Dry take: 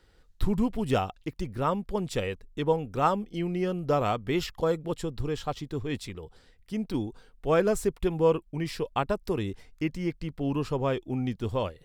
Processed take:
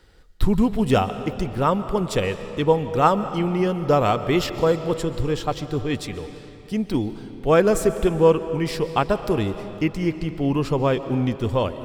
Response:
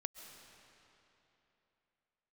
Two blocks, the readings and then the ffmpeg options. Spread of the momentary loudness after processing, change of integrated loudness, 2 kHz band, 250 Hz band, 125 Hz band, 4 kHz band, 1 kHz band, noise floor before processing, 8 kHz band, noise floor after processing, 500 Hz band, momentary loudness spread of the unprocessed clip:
9 LU, +7.5 dB, +7.5 dB, +7.5 dB, +7.5 dB, +7.5 dB, +7.5 dB, -60 dBFS, +7.5 dB, -42 dBFS, +7.5 dB, 10 LU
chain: -filter_complex "[0:a]asplit=2[a][b];[1:a]atrim=start_sample=2205[c];[b][c]afir=irnorm=-1:irlink=0,volume=5.5dB[d];[a][d]amix=inputs=2:normalize=0"

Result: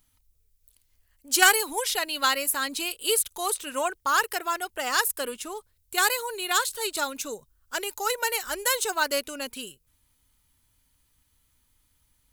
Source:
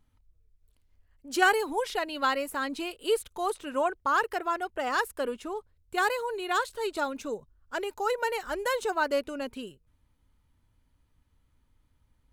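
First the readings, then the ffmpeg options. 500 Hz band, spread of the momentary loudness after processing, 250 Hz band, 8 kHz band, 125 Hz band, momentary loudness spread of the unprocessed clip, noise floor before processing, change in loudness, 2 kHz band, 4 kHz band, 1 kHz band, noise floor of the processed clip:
-2.0 dB, 12 LU, -3.0 dB, +16.5 dB, n/a, 11 LU, -70 dBFS, +4.0 dB, +4.0 dB, +9.5 dB, +1.0 dB, -69 dBFS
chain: -af "aeval=exprs='0.335*(cos(1*acos(clip(val(0)/0.335,-1,1)))-cos(1*PI/2))+0.0376*(cos(3*acos(clip(val(0)/0.335,-1,1)))-cos(3*PI/2))':c=same,crystalizer=i=8:c=0"

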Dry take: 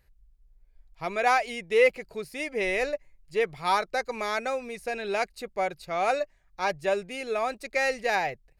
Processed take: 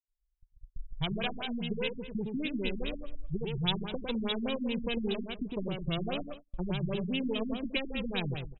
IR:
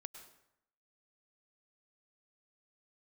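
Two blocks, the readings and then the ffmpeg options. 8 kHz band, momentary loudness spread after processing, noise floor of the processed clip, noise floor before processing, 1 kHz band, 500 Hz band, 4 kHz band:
under -35 dB, 6 LU, -79 dBFS, -63 dBFS, -16.0 dB, -10.0 dB, +3.0 dB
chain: -filter_complex "[0:a]highshelf=f=5.7k:g=10.5,bandreject=f=1.3k:w=9,afftdn=nr=28:nf=-38,asubboost=boost=10:cutoff=240,asplit=2[a][b];[b]alimiter=limit=-21dB:level=0:latency=1:release=251,volume=1dB[c];[a][c]amix=inputs=2:normalize=0,acompressor=threshold=-30dB:ratio=6,asplit=2[d][e];[e]adelay=103,lowpass=f=3.7k:p=1,volume=-5.5dB,asplit=2[f][g];[g]adelay=103,lowpass=f=3.7k:p=1,volume=0.36,asplit=2[h][i];[i]adelay=103,lowpass=f=3.7k:p=1,volume=0.36,asplit=2[j][k];[k]adelay=103,lowpass=f=3.7k:p=1,volume=0.36[l];[d][f][h][j][l]amix=inputs=5:normalize=0,acrossover=split=420[m][n];[n]aeval=exprs='max(val(0),0)':c=same[o];[m][o]amix=inputs=2:normalize=0,aexciter=amount=15.1:drive=4.8:freq=3k,agate=range=-32dB:threshold=-40dB:ratio=16:detection=peak,afftfilt=real='re*lt(b*sr/1024,300*pow(4000/300,0.5+0.5*sin(2*PI*4.9*pts/sr)))':imag='im*lt(b*sr/1024,300*pow(4000/300,0.5+0.5*sin(2*PI*4.9*pts/sr)))':win_size=1024:overlap=0.75"

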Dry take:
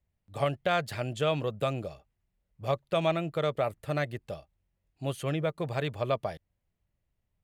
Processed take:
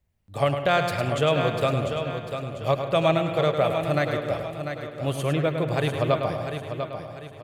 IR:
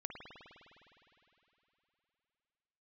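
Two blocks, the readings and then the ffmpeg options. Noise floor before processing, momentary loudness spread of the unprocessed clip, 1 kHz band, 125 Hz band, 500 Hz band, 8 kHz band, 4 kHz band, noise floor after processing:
-81 dBFS, 12 LU, +7.5 dB, +7.5 dB, +7.5 dB, +7.0 dB, +7.0 dB, -44 dBFS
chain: -filter_complex "[0:a]aecho=1:1:696|1392|2088|2784:0.398|0.155|0.0606|0.0236,asplit=2[a][b];[1:a]atrim=start_sample=2205,afade=t=out:st=0.37:d=0.01,atrim=end_sample=16758,adelay=105[c];[b][c]afir=irnorm=-1:irlink=0,volume=-3.5dB[d];[a][d]amix=inputs=2:normalize=0,volume=5.5dB"

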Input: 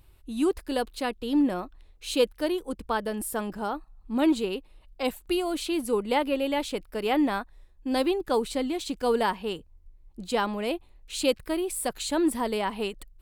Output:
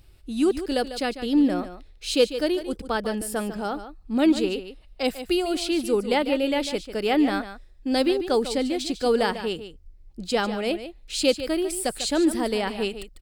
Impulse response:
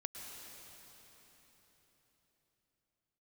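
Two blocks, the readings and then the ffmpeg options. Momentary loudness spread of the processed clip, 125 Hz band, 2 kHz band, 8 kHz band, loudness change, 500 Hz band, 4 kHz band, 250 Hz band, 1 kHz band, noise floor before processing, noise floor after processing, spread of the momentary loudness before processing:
10 LU, n/a, +3.5 dB, +3.0 dB, +3.5 dB, +3.5 dB, +5.0 dB, +3.5 dB, +0.5 dB, -57 dBFS, -51 dBFS, 10 LU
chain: -af "equalizer=f=1k:t=o:w=0.33:g=-10,equalizer=f=5k:t=o:w=0.33:g=7,equalizer=f=12.5k:t=o:w=0.33:g=-8,aecho=1:1:147:0.266,volume=3.5dB"

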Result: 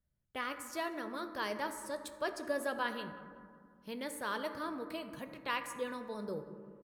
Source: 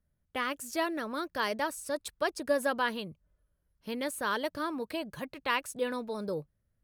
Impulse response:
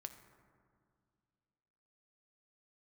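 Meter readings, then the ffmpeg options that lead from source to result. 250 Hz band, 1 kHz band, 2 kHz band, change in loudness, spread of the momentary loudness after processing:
-6.0 dB, -5.5 dB, -5.5 dB, -6.0 dB, 10 LU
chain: -filter_complex "[0:a]asplit=2[a][b];[b]adelay=186,lowpass=f=2.3k:p=1,volume=-18.5dB,asplit=2[c][d];[d]adelay=186,lowpass=f=2.3k:p=1,volume=0.42,asplit=2[e][f];[f]adelay=186,lowpass=f=2.3k:p=1,volume=0.42[g];[a][c][e][g]amix=inputs=4:normalize=0[h];[1:a]atrim=start_sample=2205[i];[h][i]afir=irnorm=-1:irlink=0,volume=-1dB"

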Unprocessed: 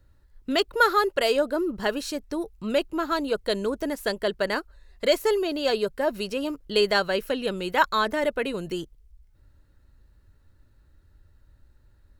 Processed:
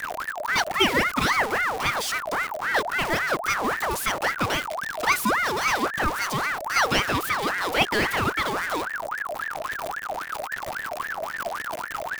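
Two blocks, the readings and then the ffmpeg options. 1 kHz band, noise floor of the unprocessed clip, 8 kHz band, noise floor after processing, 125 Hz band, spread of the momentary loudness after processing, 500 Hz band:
+4.5 dB, -60 dBFS, +10.0 dB, -35 dBFS, +8.0 dB, 9 LU, -5.0 dB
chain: -af "aeval=exprs='val(0)+0.5*0.075*sgn(val(0))':c=same,afreqshift=-40,aeval=exprs='val(0)*sin(2*PI*1200*n/s+1200*0.5/3.7*sin(2*PI*3.7*n/s))':c=same"

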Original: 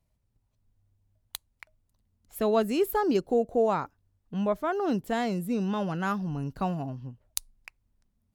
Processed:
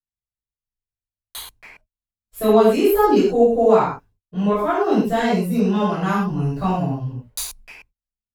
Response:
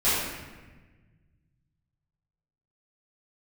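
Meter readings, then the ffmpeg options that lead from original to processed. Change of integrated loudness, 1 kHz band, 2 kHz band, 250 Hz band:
+10.0 dB, +10.0 dB, +8.5 dB, +10.0 dB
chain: -filter_complex "[0:a]agate=range=-37dB:threshold=-56dB:ratio=16:detection=peak[a];[1:a]atrim=start_sample=2205,atrim=end_sample=6174[b];[a][b]afir=irnorm=-1:irlink=0,volume=-4.5dB"

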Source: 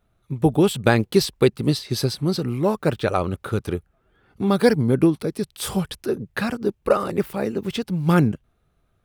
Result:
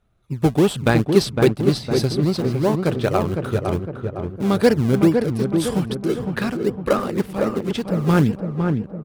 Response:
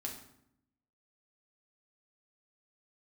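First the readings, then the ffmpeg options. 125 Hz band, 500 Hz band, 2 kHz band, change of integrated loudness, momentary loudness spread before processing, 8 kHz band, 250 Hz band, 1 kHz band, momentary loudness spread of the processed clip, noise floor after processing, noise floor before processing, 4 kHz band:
+3.0 dB, +2.0 dB, +0.5 dB, +2.0 dB, 9 LU, -0.5 dB, +2.5 dB, +0.5 dB, 8 LU, -39 dBFS, -67 dBFS, 0.0 dB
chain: -filter_complex "[0:a]lowpass=11k,asplit=2[a][b];[b]acrusher=samples=34:mix=1:aa=0.000001:lfo=1:lforange=34:lforate=2.5,volume=-10dB[c];[a][c]amix=inputs=2:normalize=0,asplit=2[d][e];[e]adelay=508,lowpass=f=1.4k:p=1,volume=-4.5dB,asplit=2[f][g];[g]adelay=508,lowpass=f=1.4k:p=1,volume=0.54,asplit=2[h][i];[i]adelay=508,lowpass=f=1.4k:p=1,volume=0.54,asplit=2[j][k];[k]adelay=508,lowpass=f=1.4k:p=1,volume=0.54,asplit=2[l][m];[m]adelay=508,lowpass=f=1.4k:p=1,volume=0.54,asplit=2[n][o];[o]adelay=508,lowpass=f=1.4k:p=1,volume=0.54,asplit=2[p][q];[q]adelay=508,lowpass=f=1.4k:p=1,volume=0.54[r];[d][f][h][j][l][n][p][r]amix=inputs=8:normalize=0,volume=-1dB"

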